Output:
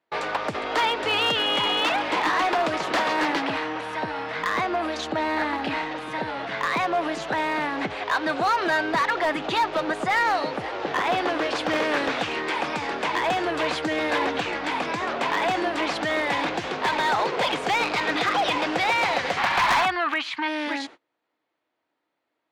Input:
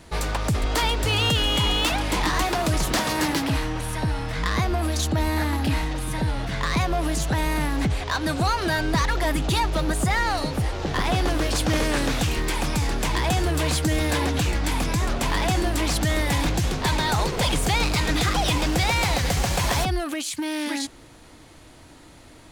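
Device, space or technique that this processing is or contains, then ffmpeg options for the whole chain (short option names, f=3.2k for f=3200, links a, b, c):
walkie-talkie: -filter_complex "[0:a]asplit=3[a][b][c];[a]afade=t=out:st=19.37:d=0.02[d];[b]equalizer=f=500:t=o:w=1:g=-11,equalizer=f=1k:t=o:w=1:g=10,equalizer=f=2k:t=o:w=1:g=6,equalizer=f=4k:t=o:w=1:g=4,equalizer=f=8k:t=o:w=1:g=-10,afade=t=in:st=19.37:d=0.02,afade=t=out:st=20.47:d=0.02[e];[c]afade=t=in:st=20.47:d=0.02[f];[d][e][f]amix=inputs=3:normalize=0,highpass=420,lowpass=2.8k,asoftclip=type=hard:threshold=-20.5dB,agate=range=-30dB:threshold=-45dB:ratio=16:detection=peak,volume=4dB"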